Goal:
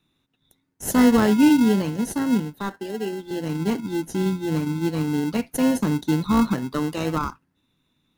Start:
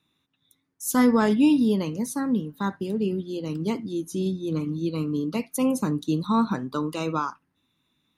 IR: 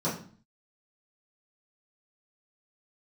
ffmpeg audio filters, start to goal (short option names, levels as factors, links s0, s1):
-filter_complex "[0:a]asettb=1/sr,asplit=3[s0][s1][s2];[s0]atrim=end=2.544[s3];[s1]atrim=start=2.54:end=3.31,asetpts=PTS-STARTPTS,afade=t=in:d=0.004:c=qsin,afade=t=out:st=0.766:d=0.004:c=qsin,highpass=370[s4];[s2]atrim=start=3.306[s5];[s3][s4]acrossfade=d=0.004:c1=hsin:c2=qsin[s6];[s6][s5]acrossfade=d=0.004:c1=qsin:c2=hsin,asplit=2[s7][s8];[s8]acrusher=samples=37:mix=1:aa=0.000001,volume=0.596[s9];[s7][s9]amix=inputs=2:normalize=0"